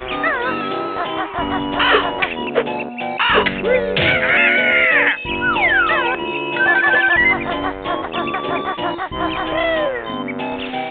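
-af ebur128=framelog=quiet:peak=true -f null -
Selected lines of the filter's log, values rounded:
Integrated loudness:
  I:         -16.7 LUFS
  Threshold: -26.7 LUFS
Loudness range:
  LRA:         5.6 LU
  Threshold: -36.0 LUFS
  LRA low:   -19.6 LUFS
  LRA high:  -14.0 LUFS
True peak:
  Peak:       -1.2 dBFS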